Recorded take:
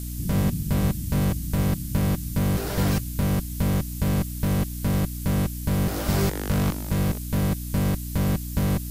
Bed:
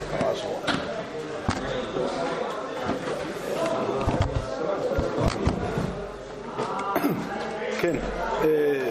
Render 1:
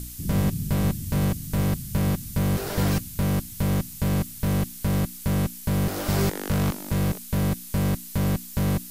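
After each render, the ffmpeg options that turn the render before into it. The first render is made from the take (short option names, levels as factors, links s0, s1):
-af "bandreject=f=60:t=h:w=4,bandreject=f=120:t=h:w=4,bandreject=f=180:t=h:w=4,bandreject=f=240:t=h:w=4,bandreject=f=300:t=h:w=4"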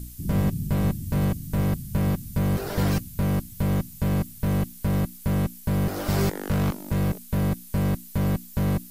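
-af "afftdn=nr=8:nf=-40"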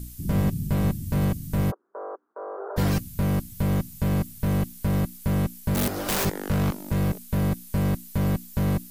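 -filter_complex "[0:a]asplit=3[s0][s1][s2];[s0]afade=t=out:st=1.7:d=0.02[s3];[s1]asuperpass=centerf=740:order=12:qfactor=0.73,afade=t=in:st=1.7:d=0.02,afade=t=out:st=2.76:d=0.02[s4];[s2]afade=t=in:st=2.76:d=0.02[s5];[s3][s4][s5]amix=inputs=3:normalize=0,asplit=3[s6][s7][s8];[s6]afade=t=out:st=5.74:d=0.02[s9];[s7]aeval=exprs='(mod(10.6*val(0)+1,2)-1)/10.6':c=same,afade=t=in:st=5.74:d=0.02,afade=t=out:st=6.24:d=0.02[s10];[s8]afade=t=in:st=6.24:d=0.02[s11];[s9][s10][s11]amix=inputs=3:normalize=0"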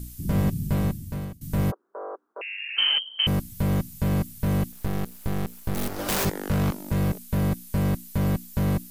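-filter_complex "[0:a]asettb=1/sr,asplit=3[s0][s1][s2];[s0]atrim=end=2.414[s3];[s1]atrim=start=2.41:end=3.27,asetpts=PTS-STARTPTS,afade=t=in:d=0.004:c=qsin,afade=t=out:st=0.856:d=0.004:c=qsin,lowpass=f=2700:t=q:w=0.5098,lowpass=f=2700:t=q:w=0.6013,lowpass=f=2700:t=q:w=0.9,lowpass=f=2700:t=q:w=2.563,afreqshift=-3200[s4];[s2]atrim=start=3.266[s5];[s3][s4]acrossfade=d=0.004:c1=hsin:c2=qsin[s6];[s6][s5]acrossfade=d=0.004:c1=qsin:c2=hsin,asettb=1/sr,asplit=3[s7][s8][s9];[s7]atrim=end=4.724[s10];[s8]atrim=start=4.72:end=5.99,asetpts=PTS-STARTPTS,afade=t=in:d=0.004:c=qsin,afade=t=out:st=1.266:d=0.004:c=qsin,aeval=exprs='max(val(0),0)':c=same[s11];[s9]atrim=start=5.986[s12];[s10][s11]acrossfade=d=0.004:c1=hsin:c2=qsin[s13];[s13][s12]acrossfade=d=0.004:c1=qsin:c2=hsin,asplit=2[s14][s15];[s14]atrim=end=1.41,asetpts=PTS-STARTPTS,afade=t=out:st=0.74:d=0.67:silence=0.0841395[s16];[s15]atrim=start=1.41,asetpts=PTS-STARTPTS,afade=t=in:d=0.004:c=hsin:silence=0.0841395[s17];[s16][s17]concat=n=2:v=0:a=1"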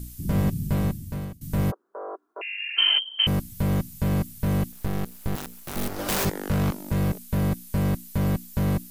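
-filter_complex "[0:a]asettb=1/sr,asplit=3[s0][s1][s2];[s0]atrim=end=2.084[s3];[s1]atrim=start=2.08:end=3.25,asetpts=PTS-STARTPTS,afade=t=in:d=0.004:c=qsin,afade=t=out:st=1.166:d=0.004:c=qsin,aecho=1:1:2.9:0.53,atrim=end_sample=51597[s4];[s2]atrim=start=3.246[s5];[s3][s4]acrossfade=d=0.004:c1=hsin:c2=qsin[s6];[s6][s5]acrossfade=d=0.004:c1=qsin:c2=hsin,asettb=1/sr,asplit=3[s7][s8][s9];[s7]atrim=end=5.354[s10];[s8]atrim=start=5.35:end=5.76,asetpts=PTS-STARTPTS,afade=t=in:d=0.004:c=qsin,afade=t=out:st=0.406:d=0.004:c=qsin,aeval=exprs='(mod(20*val(0)+1,2)-1)/20':c=same[s11];[s9]atrim=start=5.756[s12];[s10][s11]acrossfade=d=0.004:c1=hsin:c2=qsin[s13];[s13][s12]acrossfade=d=0.004:c1=qsin:c2=hsin"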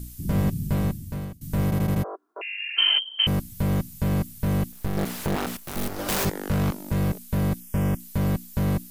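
-filter_complex "[0:a]asettb=1/sr,asplit=3[s0][s1][s2];[s0]atrim=end=4.974[s3];[s1]atrim=start=4.97:end=5.57,asetpts=PTS-STARTPTS,afade=t=in:d=0.004:c=qsin,afade=t=out:st=0.596:d=0.004:c=qsin,asplit=2[s4][s5];[s5]highpass=f=720:p=1,volume=100,asoftclip=type=tanh:threshold=0.158[s6];[s4][s6]amix=inputs=2:normalize=0,lowpass=f=1800:p=1,volume=0.501[s7];[s2]atrim=start=5.566[s8];[s3][s7]acrossfade=d=0.004:c1=hsin:c2=qsin[s9];[s9][s8]acrossfade=d=0.004:c1=qsin:c2=hsin,asettb=1/sr,asplit=3[s10][s11][s12];[s10]atrim=end=7.604[s13];[s11]atrim=start=7.6:end=8,asetpts=PTS-STARTPTS,afade=t=in:d=0.004:c=qsin,afade=t=out:st=0.396:d=0.004:c=qsin,asuperstop=centerf=4100:order=4:qfactor=2.4[s14];[s12]atrim=start=7.996[s15];[s13][s14]acrossfade=d=0.004:c1=hsin:c2=qsin[s16];[s16][s15]acrossfade=d=0.004:c1=qsin:c2=hsin,asplit=6[s17][s18][s19][s20][s21][s22];[s17]atrim=end=1.722[s23];[s18]atrim=start=1.638:end=1.722[s24];[s19]atrim=start=1.638:end=1.722[s25];[s20]atrim=start=1.638:end=1.722[s26];[s21]atrim=start=1.638:end=1.722[s27];[s22]atrim=start=2.038[s28];[s23][s24]acrossfade=d=0.004:c1=hsin:c2=hsin[s29];[s29][s25]acrossfade=d=0.004:c1=hsin:c2=hsin[s30];[s30][s26]acrossfade=d=0.004:c1=hsin:c2=hsin[s31];[s31][s27]acrossfade=d=0.004:c1=hsin:c2=hsin[s32];[s32][s28]acrossfade=d=0.004:c1=hsin:c2=hsin"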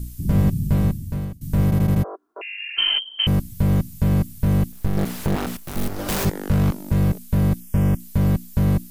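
-af "lowshelf=f=240:g=7.5"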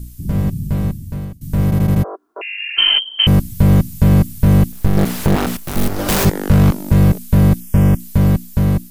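-af "dynaudnorm=f=740:g=5:m=3.76"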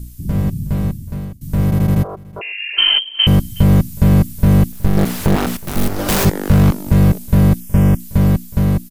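-af "aecho=1:1:368:0.075"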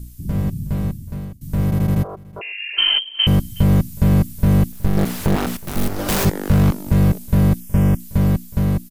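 -af "volume=0.668"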